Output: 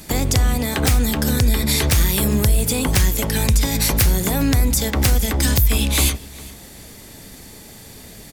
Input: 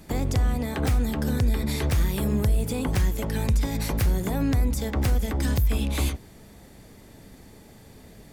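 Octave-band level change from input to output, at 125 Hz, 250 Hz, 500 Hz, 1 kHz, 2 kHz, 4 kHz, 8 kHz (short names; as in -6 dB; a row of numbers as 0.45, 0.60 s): +5.5, +5.5, +6.0, +7.0, +10.5, +14.0, +16.0 dB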